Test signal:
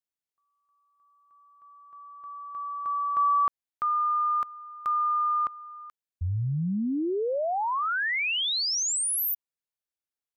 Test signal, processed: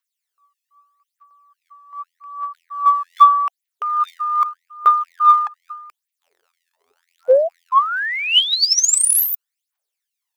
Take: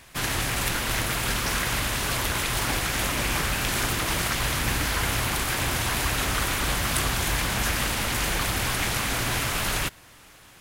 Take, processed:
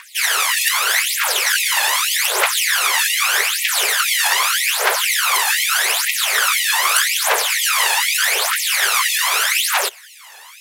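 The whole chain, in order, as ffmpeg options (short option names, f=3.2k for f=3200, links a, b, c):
-af "aphaser=in_gain=1:out_gain=1:delay=1.2:decay=0.71:speed=0.82:type=triangular,acontrast=27,afftfilt=real='re*gte(b*sr/1024,350*pow(1900/350,0.5+0.5*sin(2*PI*2*pts/sr)))':imag='im*gte(b*sr/1024,350*pow(1900/350,0.5+0.5*sin(2*PI*2*pts/sr)))':win_size=1024:overlap=0.75,volume=3.5dB"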